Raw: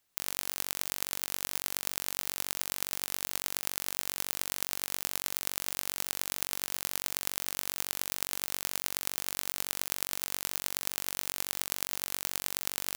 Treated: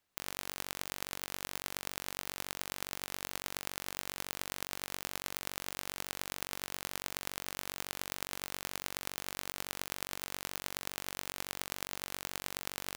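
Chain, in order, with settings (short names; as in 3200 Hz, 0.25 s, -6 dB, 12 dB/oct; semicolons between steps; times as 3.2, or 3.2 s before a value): high shelf 4300 Hz -9.5 dB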